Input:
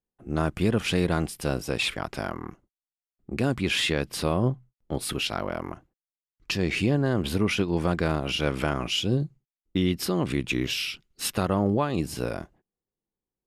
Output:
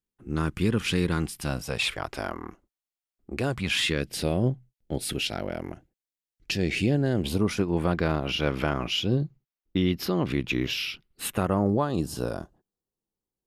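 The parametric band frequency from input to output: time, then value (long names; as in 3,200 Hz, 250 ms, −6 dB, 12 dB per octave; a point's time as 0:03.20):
parametric band −14 dB 0.53 octaves
0:01.20 660 Hz
0:02.30 140 Hz
0:03.30 140 Hz
0:04.10 1,100 Hz
0:07.17 1,100 Hz
0:07.98 8,500 Hz
0:10.92 8,500 Hz
0:11.92 2,200 Hz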